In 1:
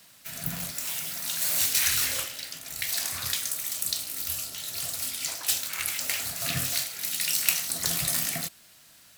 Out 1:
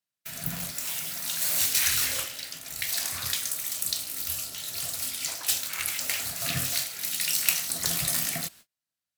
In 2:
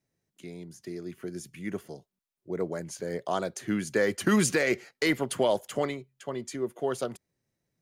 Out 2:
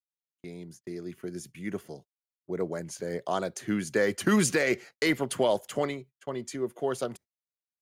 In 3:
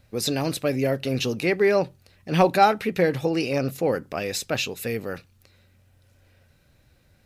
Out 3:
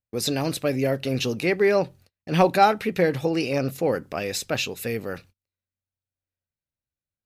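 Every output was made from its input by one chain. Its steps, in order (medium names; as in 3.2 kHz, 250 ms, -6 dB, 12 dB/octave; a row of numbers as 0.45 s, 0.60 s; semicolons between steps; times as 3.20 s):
gate -48 dBFS, range -36 dB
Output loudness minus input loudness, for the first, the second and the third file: 0.0 LU, 0.0 LU, 0.0 LU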